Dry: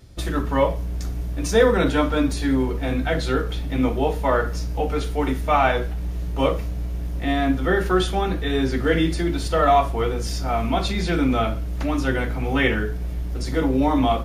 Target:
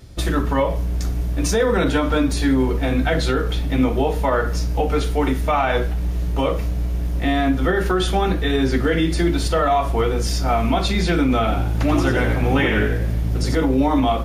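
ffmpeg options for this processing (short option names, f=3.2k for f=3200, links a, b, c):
-filter_complex "[0:a]alimiter=limit=-14dB:level=0:latency=1:release=123,asettb=1/sr,asplit=3[a][b][c];[a]atrim=end=11.394[d];[b]atrim=start=11.39:end=13.55,asetpts=PTS-STARTPTS,afade=t=in:d=0.004:c=qsin,afade=t=out:st=2.156:d=0.004:c=qsin,asplit=6[e][f][g][h][i][j];[f]adelay=88,afreqshift=54,volume=-6dB[k];[g]adelay=176,afreqshift=108,volume=-13.7dB[l];[h]adelay=264,afreqshift=162,volume=-21.5dB[m];[i]adelay=352,afreqshift=216,volume=-29.2dB[n];[j]adelay=440,afreqshift=270,volume=-37dB[o];[e][k][l][m][n][o]amix=inputs=6:normalize=0,atrim=end_sample=95256[p];[c]atrim=start=13.546[q];[d][p]acrossfade=d=0.004:c1=hsin:c2=qsin[r];[r][q]acrossfade=d=0.004:c1=qsin:c2=hsin,volume=5dB"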